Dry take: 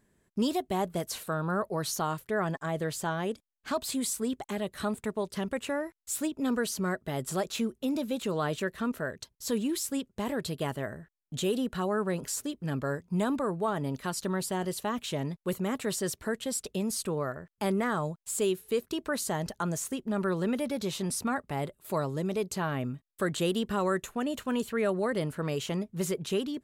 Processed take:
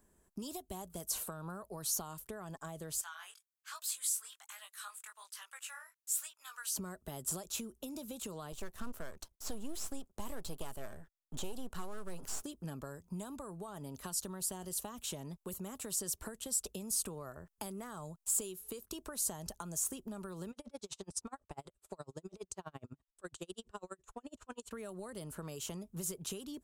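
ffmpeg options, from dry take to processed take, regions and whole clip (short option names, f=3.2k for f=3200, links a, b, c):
-filter_complex "[0:a]asettb=1/sr,asplit=3[a][b][c];[a]atrim=end=3.014[d];[b]atrim=start=3.01:end=6.76,asetpts=PTS-STARTPTS,afade=t=in:d=0.004:c=qsin,afade=t=out:st=3.746:d=0.004:c=qsin,highpass=f=1.4k:w=0.5412,highpass=f=1.4k:w=1.3066,flanger=delay=17:depth=5.3:speed=1.2[e];[c]atrim=start=6.756[f];[d][e]acrossfade=d=0.004:c1=hsin:c2=qsin[g];[g][f]acrossfade=d=0.004:c1=qsin:c2=hsin,asettb=1/sr,asplit=3[h][i][j];[h]atrim=end=8.524[k];[i]atrim=start=8.52:end=12.44,asetpts=PTS-STARTPTS,afade=t=in:d=0.004:c=qsin,afade=t=out:st=3.916:d=0.004:c=qsin,aeval=exprs='if(lt(val(0),0),0.251*val(0),val(0))':c=same,acrossover=split=6200[l][m];[m]acompressor=threshold=-50dB:ratio=4:attack=1:release=60[n];[l][n]amix=inputs=2:normalize=0[o];[j]atrim=start=12.436[p];[k][o]acrossfade=d=0.004:c1=hsin:c2=qsin[q];[q][p]acrossfade=d=0.004:c1=qsin:c2=hsin,asettb=1/sr,asplit=3[r][s][t];[r]atrim=end=20.514[u];[s]atrim=start=20.51:end=24.71,asetpts=PTS-STARTPTS,afade=t=in:d=0.004:c=qsin,afade=t=out:st=4.196:d=0.004:c=qsin,lowpass=f=8.5k:w=0.5412,lowpass=f=8.5k:w=1.3066,equalizer=f=210:t=o:w=0.69:g=-7,aeval=exprs='val(0)*pow(10,-39*(0.5-0.5*cos(2*PI*12*n/s))/20)':c=same[v];[t]atrim=start=24.706[w];[u][v]acrossfade=d=0.004:c1=hsin:c2=qsin[x];[x][w]acrossfade=d=0.004:c1=qsin:c2=hsin,acompressor=threshold=-31dB:ratio=6,equalizer=f=125:t=o:w=1:g=-12,equalizer=f=250:t=o:w=1:g=-5,equalizer=f=500:t=o:w=1:g=-5,equalizer=f=2k:t=o:w=1:g=-11,equalizer=f=4k:t=o:w=1:g=-8,acrossover=split=150|3000[y][z][aa];[z]acompressor=threshold=-49dB:ratio=6[ab];[y][ab][aa]amix=inputs=3:normalize=0,volume=5dB"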